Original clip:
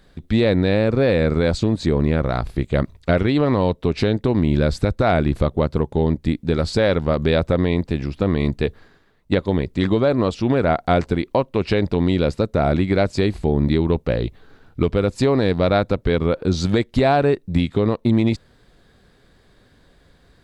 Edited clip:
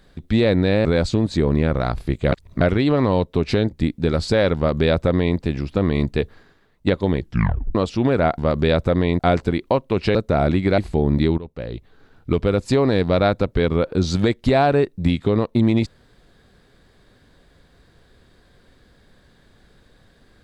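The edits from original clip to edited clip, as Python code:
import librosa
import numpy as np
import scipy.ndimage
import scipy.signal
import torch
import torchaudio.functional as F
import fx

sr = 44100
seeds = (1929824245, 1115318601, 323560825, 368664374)

y = fx.edit(x, sr, fx.cut(start_s=0.85, length_s=0.49),
    fx.reverse_span(start_s=2.81, length_s=0.29),
    fx.cut(start_s=4.2, length_s=1.96),
    fx.duplicate(start_s=7.01, length_s=0.81, to_s=10.83),
    fx.tape_stop(start_s=9.62, length_s=0.58),
    fx.cut(start_s=11.79, length_s=0.61),
    fx.cut(start_s=13.03, length_s=0.25),
    fx.fade_in_from(start_s=13.88, length_s=1.06, floor_db=-18.0), tone=tone)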